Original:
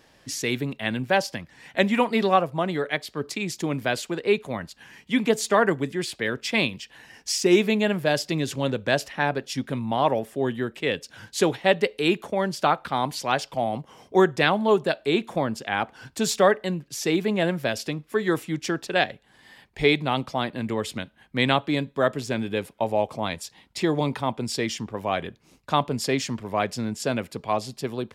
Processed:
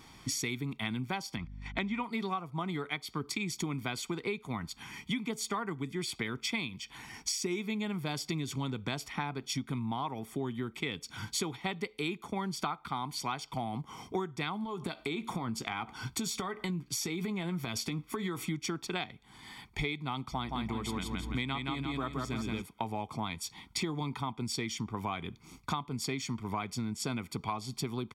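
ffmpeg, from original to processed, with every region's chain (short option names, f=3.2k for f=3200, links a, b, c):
-filter_complex "[0:a]asettb=1/sr,asplit=3[a][b][c];[a]atrim=end=1.364[d];[b]atrim=start=1.36:end=2.04,asetpts=PTS-STARTPTS,afade=t=in:d=0.004:c=qsin,afade=t=out:st=0.676:d=0.004:c=qsin,agate=range=-22dB:threshold=-47dB:ratio=16:release=100:detection=peak,lowpass=4.7k,aeval=exprs='val(0)+0.00355*(sin(2*PI*50*n/s)+sin(2*PI*2*50*n/s)/2+sin(2*PI*3*50*n/s)/3+sin(2*PI*4*50*n/s)/4+sin(2*PI*5*50*n/s)/5)':c=same[e];[c]atrim=start=2.036[f];[d][e]acrossfade=d=0.004:c1=hsin:c2=qsin[g];[g][f]acrossfade=d=0.004:c1=qsin:c2=hsin,asettb=1/sr,asplit=3[h][i][j];[h]atrim=end=14.644[k];[i]atrim=start=14.64:end=18.46,asetpts=PTS-STARTPTS,afade=t=in:d=0.004:c=qsin,afade=t=out:st=3.816:d=0.004:c=qsin,acompressor=threshold=-29dB:ratio=5:attack=3.2:release=140:knee=1:detection=peak,asplit=2[l][m];[m]adelay=17,volume=-12.5dB[n];[l][n]amix=inputs=2:normalize=0,atrim=end_sample=168462[o];[j]atrim=start=18.456[p];[k][o]acrossfade=d=0.004:c1=hsin:c2=qsin[q];[q][p]acrossfade=d=0.004:c1=qsin:c2=hsin,asettb=1/sr,asplit=3[r][s][t];[r]atrim=end=20.324[u];[s]atrim=start=20.32:end=22.62,asetpts=PTS-STARTPTS,afade=t=in:d=0.004:c=qsin,afade=t=out:st=2.296:d=0.004:c=qsin,aeval=exprs='val(0)+0.00891*(sin(2*PI*60*n/s)+sin(2*PI*2*60*n/s)/2+sin(2*PI*3*60*n/s)/3+sin(2*PI*4*60*n/s)/4+sin(2*PI*5*60*n/s)/5)':c=same,aecho=1:1:170|340|510|680|850:0.708|0.262|0.0969|0.0359|0.0133,atrim=end_sample=101430[v];[t]atrim=start=22.616[w];[u][v]acrossfade=d=0.004:c1=hsin:c2=qsin[x];[x][w]acrossfade=d=0.004:c1=qsin:c2=hsin,aecho=1:1:0.9:0.81,acompressor=threshold=-33dB:ratio=12,volume=1.5dB"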